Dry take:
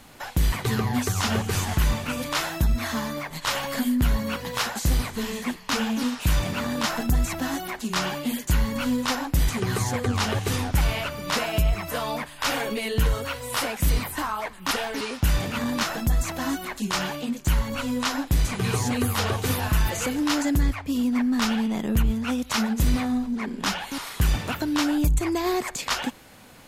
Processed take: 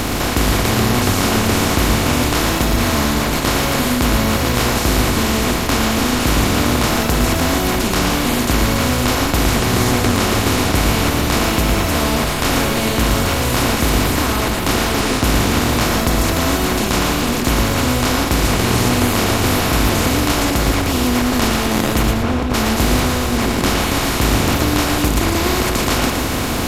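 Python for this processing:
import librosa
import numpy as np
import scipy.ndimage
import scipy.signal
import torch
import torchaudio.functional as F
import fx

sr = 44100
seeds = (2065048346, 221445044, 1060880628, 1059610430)

y = fx.bin_compress(x, sr, power=0.2)
y = fx.lowpass(y, sr, hz=fx.line((22.1, 2200.0), (22.53, 1000.0)), slope=6, at=(22.1, 22.53), fade=0.02)
y = y + 10.0 ** (-6.0 / 20.0) * np.pad(y, (int(114 * sr / 1000.0), 0))[:len(y)]
y = F.gain(torch.from_numpy(y), -1.0).numpy()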